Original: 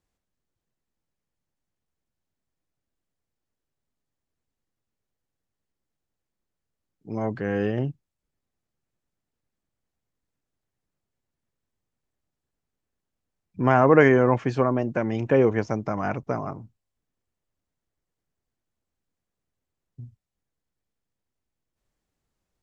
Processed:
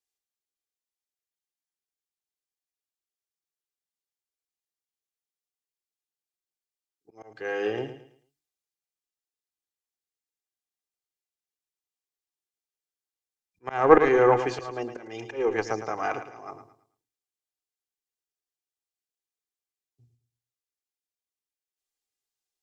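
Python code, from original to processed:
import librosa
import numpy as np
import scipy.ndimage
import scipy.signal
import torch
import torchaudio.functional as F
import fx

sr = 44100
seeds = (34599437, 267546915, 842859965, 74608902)

p1 = fx.bass_treble(x, sr, bass_db=-14, treble_db=2)
p2 = fx.hum_notches(p1, sr, base_hz=50, count=7)
p3 = p2 + 0.53 * np.pad(p2, (int(2.5 * sr / 1000.0), 0))[:len(p2)]
p4 = fx.cheby_harmonics(p3, sr, harmonics=(2, 7), levels_db=(-12, -42), full_scale_db=-3.5)
p5 = fx.auto_swell(p4, sr, attack_ms=256.0)
p6 = p5 + fx.echo_feedback(p5, sr, ms=110, feedback_pct=38, wet_db=-10.0, dry=0)
y = fx.band_widen(p6, sr, depth_pct=40)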